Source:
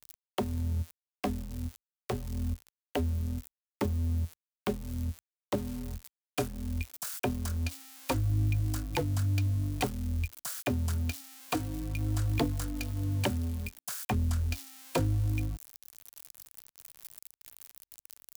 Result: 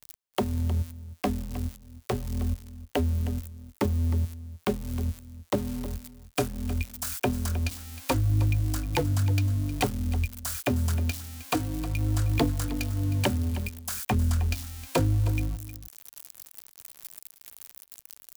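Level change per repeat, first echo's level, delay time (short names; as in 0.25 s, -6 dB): no steady repeat, -15.0 dB, 0.312 s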